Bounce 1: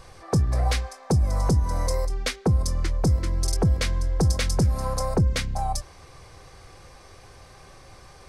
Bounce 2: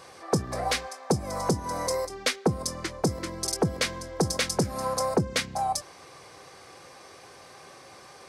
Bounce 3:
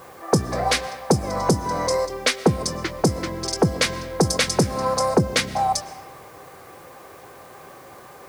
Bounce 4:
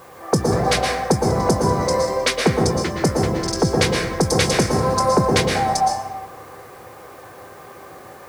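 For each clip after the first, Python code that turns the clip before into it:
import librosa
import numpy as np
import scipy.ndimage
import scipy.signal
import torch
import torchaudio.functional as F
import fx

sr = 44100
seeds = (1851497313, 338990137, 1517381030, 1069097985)

y1 = scipy.signal.sosfilt(scipy.signal.butter(2, 220.0, 'highpass', fs=sr, output='sos'), x)
y1 = y1 * librosa.db_to_amplitude(2.0)
y2 = fx.env_lowpass(y1, sr, base_hz=1500.0, full_db=-21.5)
y2 = fx.rev_freeverb(y2, sr, rt60_s=1.5, hf_ratio=0.6, predelay_ms=80, drr_db=16.5)
y2 = fx.quant_dither(y2, sr, seeds[0], bits=10, dither='triangular')
y2 = y2 * librosa.db_to_amplitude(6.5)
y3 = fx.rev_plate(y2, sr, seeds[1], rt60_s=1.2, hf_ratio=0.35, predelay_ms=105, drr_db=0.0)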